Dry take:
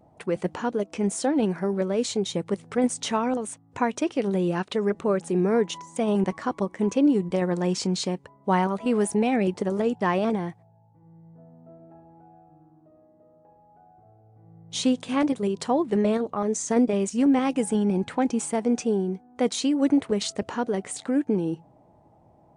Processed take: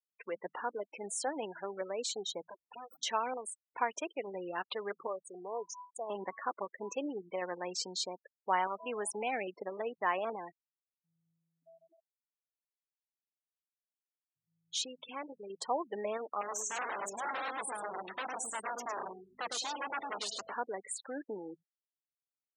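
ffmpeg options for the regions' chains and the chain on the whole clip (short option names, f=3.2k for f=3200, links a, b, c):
-filter_complex "[0:a]asettb=1/sr,asplit=3[a][b][c];[a]atrim=end=2.474[d];[b]atrim=start=2.47:end=2.97,asetpts=PTS-STARTPTS,afade=t=in:d=0.004:c=qsin,afade=t=out:st=0.496:d=0.004:c=qsin,acompressor=threshold=-29dB:ratio=6:attack=3.2:release=140:knee=1:detection=peak,aeval=exprs='abs(val(0))':c=same[e];[c]atrim=start=2.966[f];[d][e]acrossfade=d=0.004:c1=hsin:c2=qsin[g];[g][f]acrossfade=d=0.004:c1=qsin:c2=hsin,asettb=1/sr,asplit=3[h][i][j];[h]atrim=end=5.074[k];[i]atrim=start=5.07:end=6.1,asetpts=PTS-STARTPTS,afade=t=in:d=0.004:c=qsin,afade=t=out:st=1.026:d=0.004:c=qsin,asuperstop=centerf=2300:order=12:qfactor=0.67,equalizer=f=250:w=1:g=-12.5[l];[j]atrim=start=6.096[m];[k][l]acrossfade=d=0.004:c1=hsin:c2=qsin[n];[n][m]acrossfade=d=0.004:c1=qsin:c2=hsin,asettb=1/sr,asplit=3[o][p][q];[o]atrim=end=14.844[r];[p]atrim=start=14.84:end=15.5,asetpts=PTS-STARTPTS,afade=t=in:d=0.004:c=qsin,afade=t=out:st=0.656:d=0.004:c=qsin,lowpass=f=3.9k:p=1,acompressor=threshold=-27dB:ratio=3:attack=3.2:release=140:knee=1:detection=peak,adynamicequalizer=threshold=0.00501:dfrequency=2600:dqfactor=0.7:tfrequency=2600:tqfactor=0.7:attack=5:release=100:ratio=0.375:range=2:mode=boostabove:tftype=highshelf[s];[q]atrim=start=15.496[t];[r][s]acrossfade=d=0.004:c1=hsin:c2=qsin[u];[u][t]acrossfade=d=0.004:c1=qsin:c2=hsin,asettb=1/sr,asplit=3[v][w][x];[v]atrim=end=16.414[y];[w]atrim=start=16.41:end=20.54,asetpts=PTS-STARTPTS,afade=t=in:d=0.004:c=qsin,afade=t=out:st=4.126:d=0.004:c=qsin,aecho=1:1:106|212|318:0.531|0.117|0.0257,atrim=end_sample=182133,aeval=exprs='val(0)+0.0112*(sin(2*PI*50*n/s)+sin(2*PI*2*50*n/s)/2+sin(2*PI*3*50*n/s)/3+sin(2*PI*4*50*n/s)/4+sin(2*PI*5*50*n/s)/5)':c=same,aeval=exprs='0.0631*(abs(mod(val(0)/0.0631+3,4)-2)-1)':c=same[z];[x]atrim=start=20.536[aa];[y][z]acrossfade=d=0.004:c1=hsin:c2=qsin[ab];[ab][aa]acrossfade=d=0.004:c1=qsin:c2=hsin,afftfilt=real='re*gte(hypot(re,im),0.0251)':imag='im*gte(hypot(re,im),0.0251)':win_size=1024:overlap=0.75,highpass=710,volume=-4.5dB"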